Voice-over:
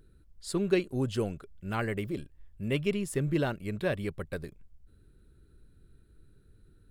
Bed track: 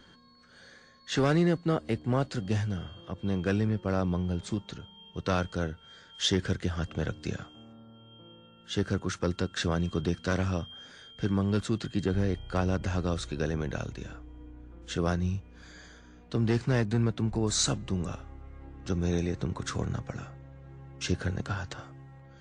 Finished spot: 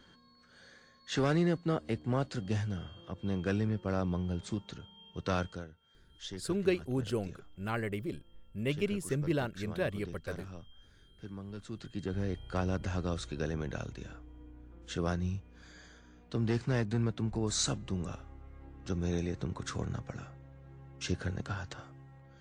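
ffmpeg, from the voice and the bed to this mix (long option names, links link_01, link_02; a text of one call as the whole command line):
ffmpeg -i stem1.wav -i stem2.wav -filter_complex "[0:a]adelay=5950,volume=-3dB[link_01];[1:a]volume=8dB,afade=type=out:start_time=5.45:duration=0.2:silence=0.237137,afade=type=in:start_time=11.57:duration=0.92:silence=0.251189[link_02];[link_01][link_02]amix=inputs=2:normalize=0" out.wav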